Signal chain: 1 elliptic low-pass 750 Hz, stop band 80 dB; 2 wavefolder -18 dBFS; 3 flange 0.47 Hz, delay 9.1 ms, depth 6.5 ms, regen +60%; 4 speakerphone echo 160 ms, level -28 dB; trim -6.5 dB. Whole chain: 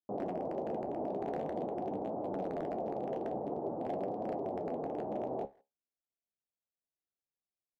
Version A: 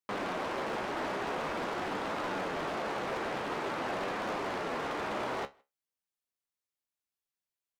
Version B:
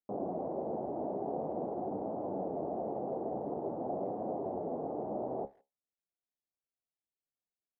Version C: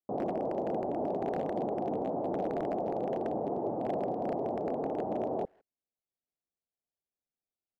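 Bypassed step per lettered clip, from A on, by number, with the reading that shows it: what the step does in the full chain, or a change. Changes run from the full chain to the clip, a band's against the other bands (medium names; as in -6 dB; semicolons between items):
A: 1, 2 kHz band +21.5 dB; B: 2, distortion -22 dB; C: 3, crest factor change -2.0 dB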